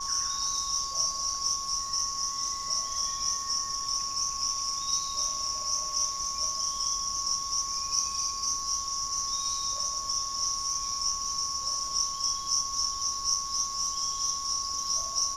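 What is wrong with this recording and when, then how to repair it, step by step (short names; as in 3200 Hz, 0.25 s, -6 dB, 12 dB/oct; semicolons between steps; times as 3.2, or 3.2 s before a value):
tone 1100 Hz -36 dBFS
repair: notch 1100 Hz, Q 30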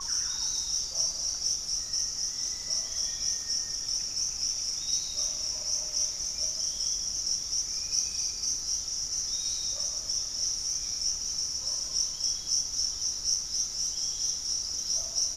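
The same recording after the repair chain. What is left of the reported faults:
none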